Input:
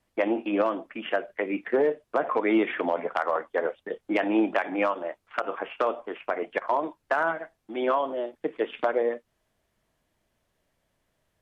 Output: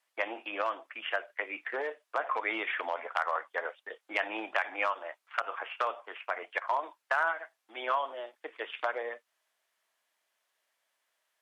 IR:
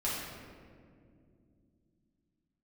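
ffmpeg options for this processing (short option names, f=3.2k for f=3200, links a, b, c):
-af "highpass=1k"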